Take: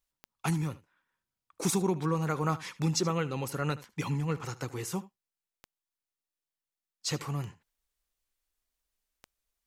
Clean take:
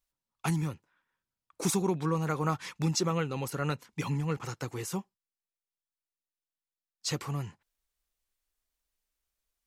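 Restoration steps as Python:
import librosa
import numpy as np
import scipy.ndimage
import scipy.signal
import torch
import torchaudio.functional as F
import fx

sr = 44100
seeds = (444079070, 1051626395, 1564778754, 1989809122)

y = fx.fix_declick_ar(x, sr, threshold=10.0)
y = fx.fix_echo_inverse(y, sr, delay_ms=76, level_db=-18.5)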